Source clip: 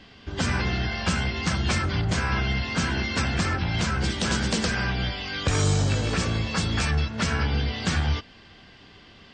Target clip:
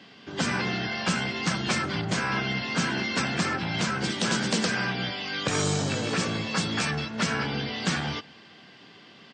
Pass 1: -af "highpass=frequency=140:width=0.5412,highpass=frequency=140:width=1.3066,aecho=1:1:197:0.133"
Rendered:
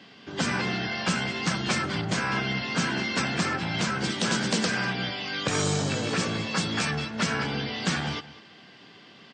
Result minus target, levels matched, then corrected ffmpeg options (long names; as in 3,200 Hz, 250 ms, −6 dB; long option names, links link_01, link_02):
echo-to-direct +10 dB
-af "highpass=frequency=140:width=0.5412,highpass=frequency=140:width=1.3066,aecho=1:1:197:0.0422"